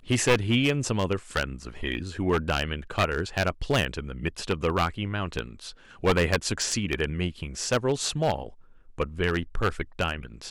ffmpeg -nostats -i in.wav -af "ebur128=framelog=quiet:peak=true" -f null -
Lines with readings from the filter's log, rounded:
Integrated loudness:
  I:         -27.5 LUFS
  Threshold: -37.7 LUFS
Loudness range:
  LRA:         1.6 LU
  Threshold: -47.9 LUFS
  LRA low:   -28.8 LUFS
  LRA high:  -27.2 LUFS
True peak:
  Peak:       -6.7 dBFS